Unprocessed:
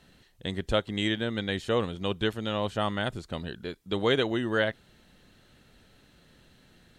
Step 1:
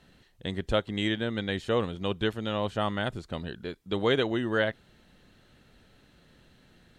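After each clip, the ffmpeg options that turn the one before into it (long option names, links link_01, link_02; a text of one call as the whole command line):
ffmpeg -i in.wav -af "highshelf=frequency=4600:gain=-5" out.wav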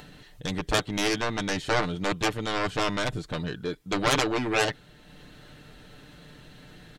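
ffmpeg -i in.wav -af "aeval=exprs='0.282*(cos(1*acos(clip(val(0)/0.282,-1,1)))-cos(1*PI/2))+0.126*(cos(7*acos(clip(val(0)/0.282,-1,1)))-cos(7*PI/2))':channel_layout=same,acompressor=mode=upward:threshold=-42dB:ratio=2.5,aecho=1:1:6.7:0.47,volume=-1dB" out.wav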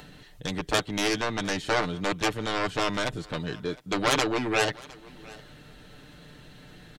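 ffmpeg -i in.wav -filter_complex "[0:a]acrossover=split=190[link_01][link_02];[link_01]alimiter=level_in=9.5dB:limit=-24dB:level=0:latency=1,volume=-9.5dB[link_03];[link_02]aecho=1:1:710:0.0794[link_04];[link_03][link_04]amix=inputs=2:normalize=0" out.wav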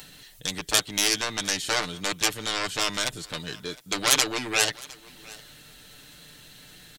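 ffmpeg -i in.wav -af "crystalizer=i=7:c=0,volume=-6dB" out.wav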